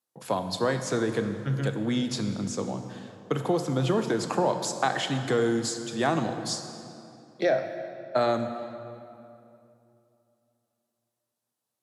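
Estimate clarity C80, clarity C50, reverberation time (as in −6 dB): 8.5 dB, 8.0 dB, 2.8 s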